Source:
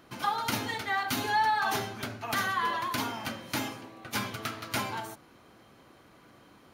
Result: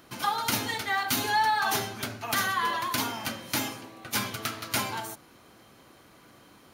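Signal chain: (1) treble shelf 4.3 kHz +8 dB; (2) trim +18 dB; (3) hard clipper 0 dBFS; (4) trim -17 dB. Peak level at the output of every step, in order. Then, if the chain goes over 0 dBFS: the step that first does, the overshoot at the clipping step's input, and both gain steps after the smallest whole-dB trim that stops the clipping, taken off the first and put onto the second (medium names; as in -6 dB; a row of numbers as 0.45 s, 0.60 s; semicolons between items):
-10.5 dBFS, +7.5 dBFS, 0.0 dBFS, -17.0 dBFS; step 2, 7.5 dB; step 2 +10 dB, step 4 -9 dB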